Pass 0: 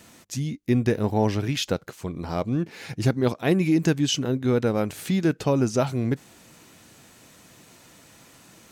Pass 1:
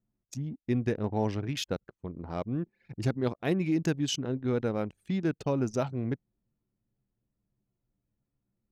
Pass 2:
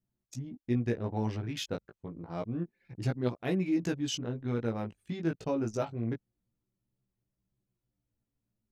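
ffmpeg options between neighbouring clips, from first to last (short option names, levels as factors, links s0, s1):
-af "anlmdn=25.1,volume=0.447"
-af "flanger=delay=16:depth=2.2:speed=0.28"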